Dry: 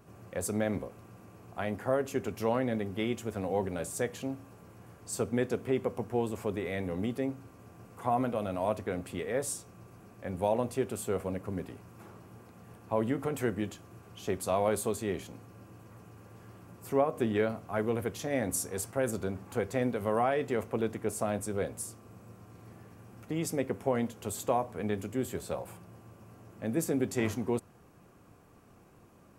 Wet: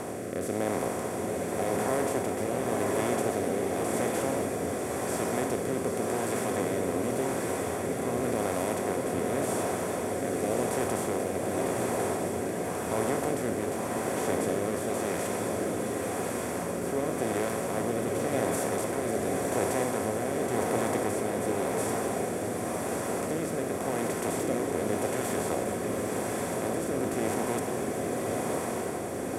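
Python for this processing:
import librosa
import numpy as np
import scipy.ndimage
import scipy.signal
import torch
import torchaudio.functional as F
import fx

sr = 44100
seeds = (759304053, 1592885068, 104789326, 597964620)

y = fx.bin_compress(x, sr, power=0.2)
y = fx.rotary(y, sr, hz=0.9)
y = fx.rev_bloom(y, sr, seeds[0], attack_ms=1120, drr_db=1.0)
y = y * librosa.db_to_amplitude(-8.0)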